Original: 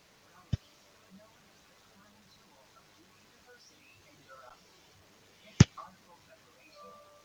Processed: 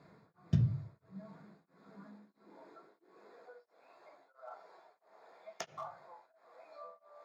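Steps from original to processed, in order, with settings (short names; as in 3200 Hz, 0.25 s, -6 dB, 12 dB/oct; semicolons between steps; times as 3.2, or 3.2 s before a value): Wiener smoothing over 15 samples; notches 50/100/150 Hz; in parallel at +2.5 dB: limiter -18 dBFS, peak gain reduction 12 dB; on the sum: soft clip -11 dBFS, distortion -11 dB; high-pass sweep 120 Hz -> 660 Hz, 0.8–3.97; on a send at -2.5 dB: reverb RT60 0.40 s, pre-delay 3 ms; on the sum: beating tremolo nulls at 1.5 Hz; gain -4.5 dB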